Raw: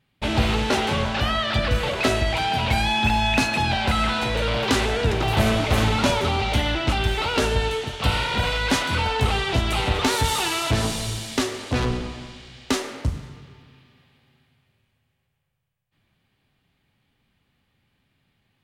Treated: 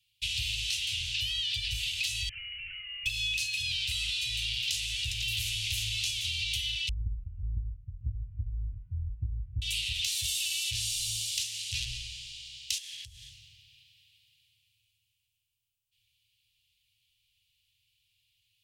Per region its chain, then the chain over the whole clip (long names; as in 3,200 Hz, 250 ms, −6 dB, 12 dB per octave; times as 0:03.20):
0:02.29–0:03.06: high-pass filter 1,400 Hz 24 dB per octave + voice inversion scrambler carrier 3,700 Hz
0:06.89–0:09.62: Butterworth low-pass 800 Hz + low-shelf EQ 100 Hz +11.5 dB
0:12.78–0:13.31: downward compressor 16 to 1, threshold −34 dBFS + hollow resonant body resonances 510/920/1,700/3,300 Hz, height 12 dB, ringing for 20 ms
whole clip: Chebyshev band-stop filter 110–2,700 Hz, order 4; bass and treble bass −14 dB, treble +3 dB; downward compressor, threshold −31 dBFS; level +2 dB